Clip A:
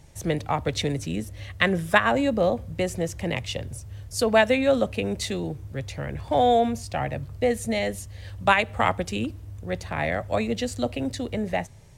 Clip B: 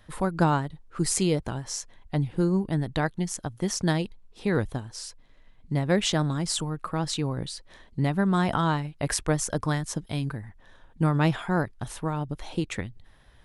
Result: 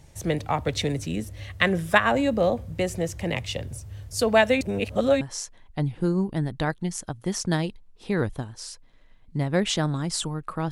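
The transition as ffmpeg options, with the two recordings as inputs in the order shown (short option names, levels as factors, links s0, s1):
-filter_complex "[0:a]apad=whole_dur=10.71,atrim=end=10.71,asplit=2[s0][s1];[s0]atrim=end=4.612[s2];[s1]atrim=start=4.608:end=5.212,asetpts=PTS-STARTPTS,areverse[s3];[1:a]atrim=start=1.568:end=7.07[s4];[s2][s3]acrossfade=d=0.004:c1=hsin:c2=hsin[s5];[s5][s4]acrossfade=d=0.004:c1=hsin:c2=hsin"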